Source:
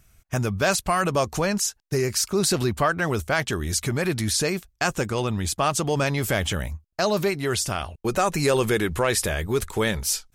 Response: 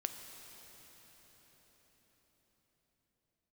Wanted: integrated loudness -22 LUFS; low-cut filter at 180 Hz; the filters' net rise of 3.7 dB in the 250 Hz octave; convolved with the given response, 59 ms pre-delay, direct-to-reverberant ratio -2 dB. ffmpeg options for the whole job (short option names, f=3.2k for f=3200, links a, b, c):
-filter_complex "[0:a]highpass=180,equalizer=f=250:t=o:g=7,asplit=2[a][b];[1:a]atrim=start_sample=2205,adelay=59[c];[b][c]afir=irnorm=-1:irlink=0,volume=2dB[d];[a][d]amix=inputs=2:normalize=0,volume=-3dB"